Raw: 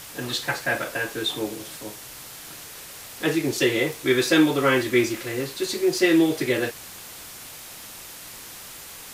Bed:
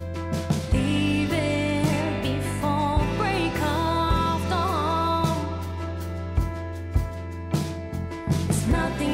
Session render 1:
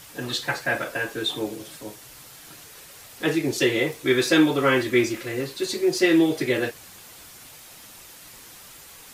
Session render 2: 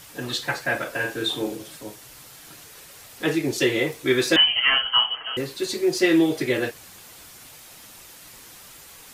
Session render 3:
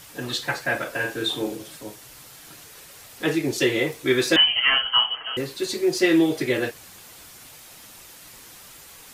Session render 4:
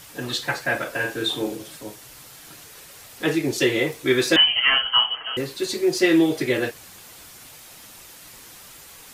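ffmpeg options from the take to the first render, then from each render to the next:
-af "afftdn=nr=6:nf=-41"
-filter_complex "[0:a]asettb=1/sr,asplit=3[s0][s1][s2];[s0]atrim=end=0.904[s3];[s1]atrim=start=0.9:end=1.57,asetpts=PTS-STARTPTS,afade=t=in:d=0.004:c=qsin,afade=t=out:st=0.666:d=0.004:c=qsin,asplit=2[s4][s5];[s5]adelay=42,volume=0.501[s6];[s4][s6]amix=inputs=2:normalize=0,atrim=end_sample=29547[s7];[s2]atrim=start=1.566[s8];[s3][s7]acrossfade=d=0.004:c1=hsin:c2=qsin[s9];[s9][s8]acrossfade=d=0.004:c1=qsin:c2=hsin,asettb=1/sr,asplit=3[s10][s11][s12];[s10]atrim=end=4.364[s13];[s11]atrim=start=4.36:end=5.37,asetpts=PTS-STARTPTS,afade=t=in:d=0.004:c=qsin,afade=t=out:st=1.006:d=0.004:c=qsin,lowpass=f=2800:t=q:w=0.5098,lowpass=f=2800:t=q:w=0.6013,lowpass=f=2800:t=q:w=0.9,lowpass=f=2800:t=q:w=2.563,afreqshift=-3300[s14];[s12]atrim=start=5.366[s15];[s13][s14]acrossfade=d=0.004:c1=hsin:c2=qsin[s16];[s16][s15]acrossfade=d=0.004:c1=qsin:c2=hsin"
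-af anull
-af "volume=1.12"

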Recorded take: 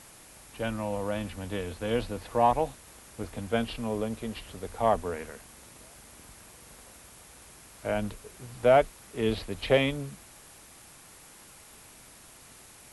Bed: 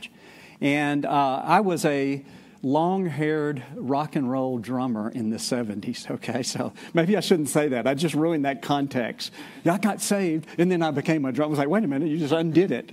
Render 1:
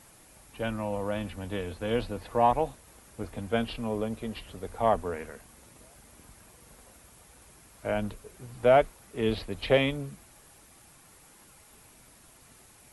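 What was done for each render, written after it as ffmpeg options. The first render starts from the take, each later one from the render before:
-af "afftdn=nr=6:nf=-52"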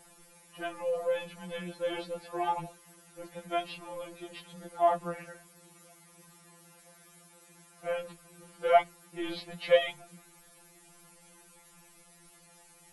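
-filter_complex "[0:a]acrossover=split=360|3800[s0][s1][s2];[s0]asoftclip=type=tanh:threshold=0.0299[s3];[s3][s1][s2]amix=inputs=3:normalize=0,afftfilt=real='re*2.83*eq(mod(b,8),0)':imag='im*2.83*eq(mod(b,8),0)':win_size=2048:overlap=0.75"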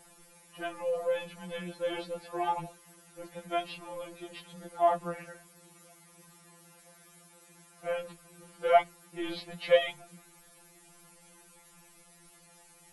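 -af anull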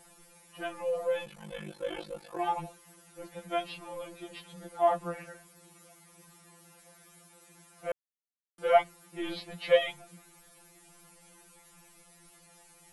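-filter_complex "[0:a]asplit=3[s0][s1][s2];[s0]afade=t=out:st=1.25:d=0.02[s3];[s1]aeval=exprs='val(0)*sin(2*PI*25*n/s)':c=same,afade=t=in:st=1.25:d=0.02,afade=t=out:st=2.37:d=0.02[s4];[s2]afade=t=in:st=2.37:d=0.02[s5];[s3][s4][s5]amix=inputs=3:normalize=0,asplit=3[s6][s7][s8];[s6]atrim=end=7.92,asetpts=PTS-STARTPTS,afade=t=out:st=7.916:d=0.004:c=hsin[s9];[s7]atrim=start=7.92:end=8.58,asetpts=PTS-STARTPTS,volume=0[s10];[s8]atrim=start=8.58,asetpts=PTS-STARTPTS,afade=t=in:d=0.004:c=hsin[s11];[s9][s10][s11]concat=n=3:v=0:a=1"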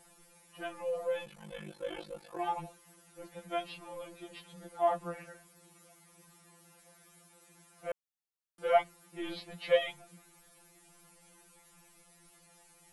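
-af "volume=0.668"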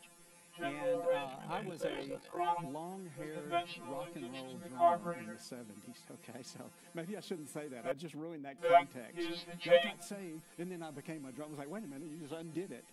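-filter_complex "[1:a]volume=0.075[s0];[0:a][s0]amix=inputs=2:normalize=0"

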